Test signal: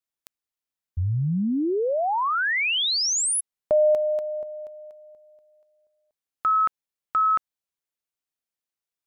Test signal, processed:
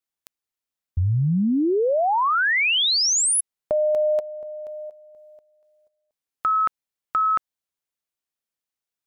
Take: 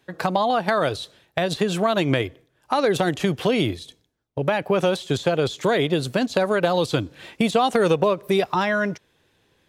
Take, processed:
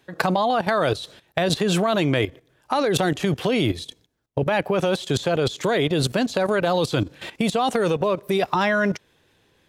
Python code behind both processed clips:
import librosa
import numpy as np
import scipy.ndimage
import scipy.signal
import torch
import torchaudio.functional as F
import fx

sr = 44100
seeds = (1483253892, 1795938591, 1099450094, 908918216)

y = fx.level_steps(x, sr, step_db=14)
y = y * librosa.db_to_amplitude(8.0)